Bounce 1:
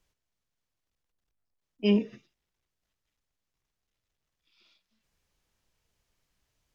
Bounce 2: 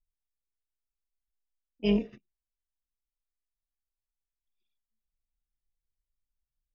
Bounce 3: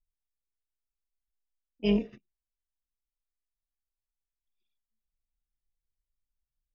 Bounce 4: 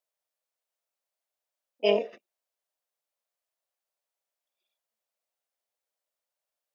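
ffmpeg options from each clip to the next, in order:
-af "tremolo=f=250:d=0.462,anlmdn=0.000158"
-af anull
-af "highpass=f=590:t=q:w=3.8,volume=5.5dB"

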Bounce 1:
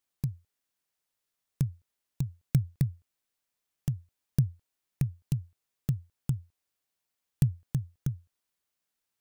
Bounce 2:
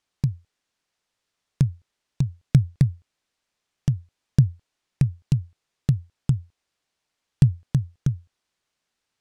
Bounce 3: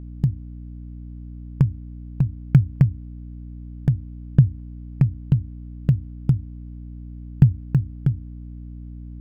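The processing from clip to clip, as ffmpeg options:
-af "lowpass=6.4k,volume=8.5dB"
-filter_complex "[0:a]acrossover=split=2700[a][b];[b]acrusher=samples=22:mix=1:aa=0.000001[c];[a][c]amix=inputs=2:normalize=0,aeval=exprs='val(0)+0.0141*(sin(2*PI*60*n/s)+sin(2*PI*2*60*n/s)/2+sin(2*PI*3*60*n/s)/3+sin(2*PI*4*60*n/s)/4+sin(2*PI*5*60*n/s)/5)':c=same,volume=2.5dB"

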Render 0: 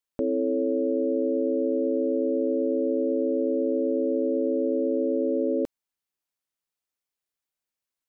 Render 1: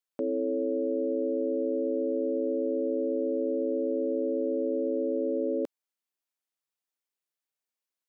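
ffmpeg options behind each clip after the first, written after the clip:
-af "highpass=240,volume=-3dB"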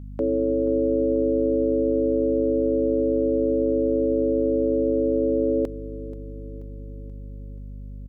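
-af "aeval=exprs='val(0)+0.00794*(sin(2*PI*50*n/s)+sin(2*PI*2*50*n/s)/2+sin(2*PI*3*50*n/s)/3+sin(2*PI*4*50*n/s)/4+sin(2*PI*5*50*n/s)/5)':c=same,acontrast=63,aecho=1:1:482|964|1446|1928|2410:0.141|0.0763|0.0412|0.0222|0.012"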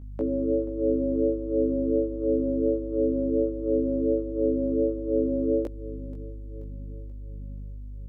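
-af "flanger=delay=17:depth=2.4:speed=1.4"

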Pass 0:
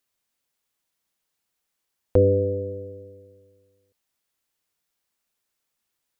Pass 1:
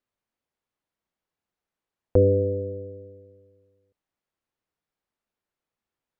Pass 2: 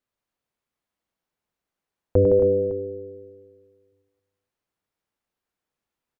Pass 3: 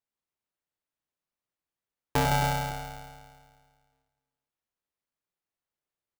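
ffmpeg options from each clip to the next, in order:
-af "lowpass=f=1.1k:p=1"
-af "aecho=1:1:99|163|243|270|558:0.447|0.422|0.2|0.376|0.141"
-af "aeval=exprs='val(0)*sgn(sin(2*PI*360*n/s))':c=same,volume=-8dB"

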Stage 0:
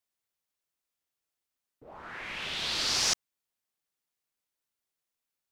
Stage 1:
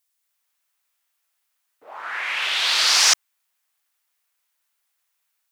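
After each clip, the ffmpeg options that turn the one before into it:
-filter_complex "[0:a]highpass=910,highshelf=f=5.5k:g=8.5,acrossover=split=2900[a][b];[a]dynaudnorm=f=210:g=3:m=8dB[c];[c][b]amix=inputs=2:normalize=0,volume=6dB"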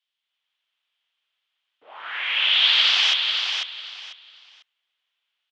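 -af "alimiter=limit=-10dB:level=0:latency=1:release=16,lowpass=f=3.2k:t=q:w=5.4,aecho=1:1:496|992|1488:0.531|0.122|0.0281,volume=-5.5dB"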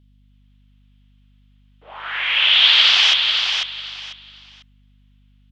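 -af "aeval=exprs='val(0)+0.00126*(sin(2*PI*50*n/s)+sin(2*PI*2*50*n/s)/2+sin(2*PI*3*50*n/s)/3+sin(2*PI*4*50*n/s)/4+sin(2*PI*5*50*n/s)/5)':c=same,volume=5dB"

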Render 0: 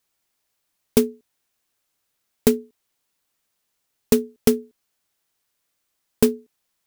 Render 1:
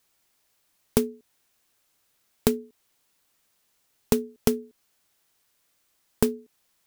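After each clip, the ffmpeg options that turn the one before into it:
-af "acompressor=threshold=-27dB:ratio=3,volume=5dB"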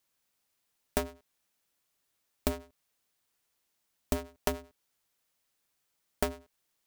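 -af "aeval=exprs='val(0)*sgn(sin(2*PI*170*n/s))':c=same,volume=-8.5dB"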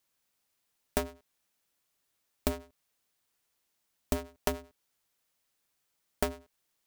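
-af anull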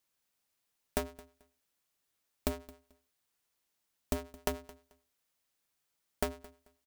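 -af "aecho=1:1:219|438:0.0944|0.0189,volume=-3dB"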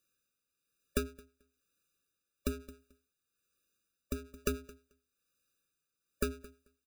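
-af "tremolo=f=1.1:d=0.53,afftfilt=real='re*eq(mod(floor(b*sr/1024/580),2),0)':imag='im*eq(mod(floor(b*sr/1024/580),2),0)':win_size=1024:overlap=0.75,volume=3.5dB"

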